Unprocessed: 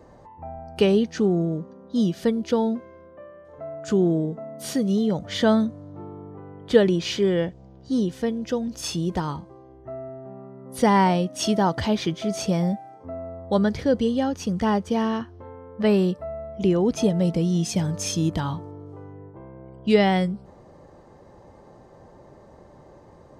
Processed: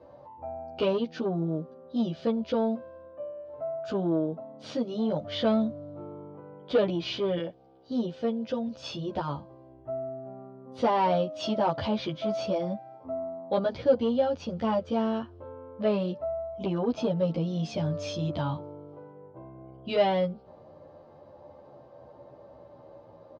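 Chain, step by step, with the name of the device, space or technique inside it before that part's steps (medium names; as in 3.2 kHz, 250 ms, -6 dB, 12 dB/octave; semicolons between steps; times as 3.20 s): 7.38–7.91 s: high-pass 320 Hz 6 dB/octave; barber-pole flanger into a guitar amplifier (endless flanger 11.7 ms -0.32 Hz; saturation -17 dBFS, distortion -16 dB; cabinet simulation 98–4300 Hz, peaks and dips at 190 Hz -7 dB, 400 Hz -5 dB, 580 Hz +8 dB, 1.9 kHz -9 dB)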